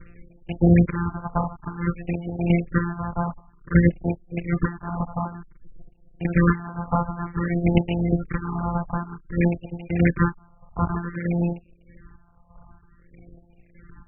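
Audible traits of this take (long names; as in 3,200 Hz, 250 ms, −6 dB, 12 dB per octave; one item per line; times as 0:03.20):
a buzz of ramps at a fixed pitch in blocks of 256 samples
phaser sweep stages 4, 0.54 Hz, lowest notch 370–1,300 Hz
chopped level 1.6 Hz, depth 60%, duty 45%
MP3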